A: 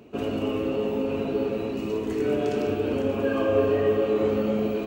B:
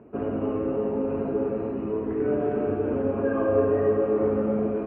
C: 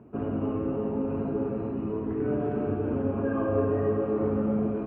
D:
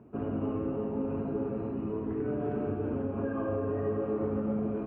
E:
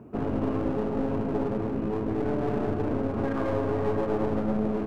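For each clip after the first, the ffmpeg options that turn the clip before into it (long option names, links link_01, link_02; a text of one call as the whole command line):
ffmpeg -i in.wav -af "lowpass=frequency=1700:width=0.5412,lowpass=frequency=1700:width=1.3066" out.wav
ffmpeg -i in.wav -af "equalizer=frequency=125:width_type=o:width=1:gain=4,equalizer=frequency=500:width_type=o:width=1:gain=-6,equalizer=frequency=2000:width_type=o:width=1:gain=-5" out.wav
ffmpeg -i in.wav -af "alimiter=limit=-19.5dB:level=0:latency=1:release=153,volume=-3dB" out.wav
ffmpeg -i in.wav -af "aeval=exprs='clip(val(0),-1,0.0126)':channel_layout=same,volume=7dB" out.wav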